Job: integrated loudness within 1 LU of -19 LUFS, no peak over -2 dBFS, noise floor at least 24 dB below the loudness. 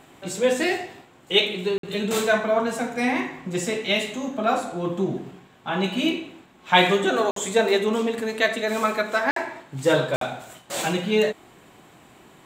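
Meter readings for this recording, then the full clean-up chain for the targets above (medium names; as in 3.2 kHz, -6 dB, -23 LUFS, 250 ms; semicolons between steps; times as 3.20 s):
dropouts 4; longest dropout 53 ms; loudness -23.5 LUFS; peak level -2.5 dBFS; loudness target -19.0 LUFS
-> interpolate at 1.78/7.31/9.31/10.16 s, 53 ms; trim +4.5 dB; peak limiter -2 dBFS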